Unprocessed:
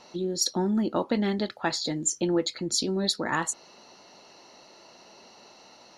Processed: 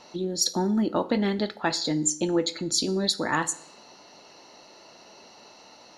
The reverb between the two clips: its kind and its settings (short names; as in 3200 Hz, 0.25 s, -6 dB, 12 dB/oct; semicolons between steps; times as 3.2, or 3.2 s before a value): FDN reverb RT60 0.68 s, low-frequency decay 0.9×, high-frequency decay 0.8×, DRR 12.5 dB; gain +1.5 dB